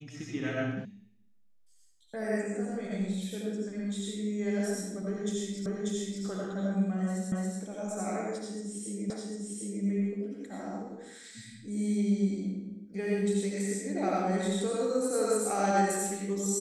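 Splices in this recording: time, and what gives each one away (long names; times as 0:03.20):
0:00.85: cut off before it has died away
0:05.66: the same again, the last 0.59 s
0:07.32: the same again, the last 0.28 s
0:09.10: the same again, the last 0.75 s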